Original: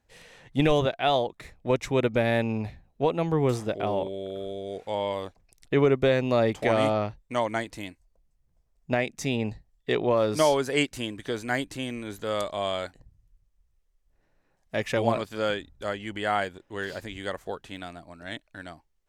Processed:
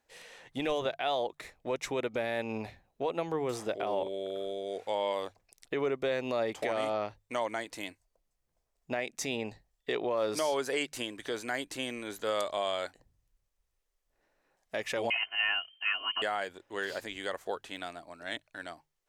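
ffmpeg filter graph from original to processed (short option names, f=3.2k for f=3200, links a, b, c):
-filter_complex "[0:a]asettb=1/sr,asplit=3[a][b][c];[a]atrim=end=15.104[d];[b]atrim=start=15.1:end=16.22,asetpts=PTS-STARTPTS,afade=t=in:d=0.004:c=qsin,afade=t=out:st=1.116:d=0.004:c=qsin,highpass=f=150:p=1,aecho=1:1:2.8:0.94,atrim=end_sample=49392,lowpass=f=2.7k:t=q:w=0.5098,lowpass=f=2.7k:t=q:w=0.6013,lowpass=f=2.7k:t=q:w=0.9,lowpass=f=2.7k:t=q:w=2.563,afreqshift=-3200[e];[c]atrim=start=16.216[f];[d][e]acrossfade=d=0.004:c1=hsin:c2=qsin[g];[g][f]acrossfade=d=0.004:c1=qsin:c2=hsin,alimiter=limit=-20dB:level=0:latency=1:release=159,bass=f=250:g=-13,treble=f=4k:g=1,bandreject=f=50:t=h:w=6,bandreject=f=100:t=h:w=6,bandreject=f=150:t=h:w=6"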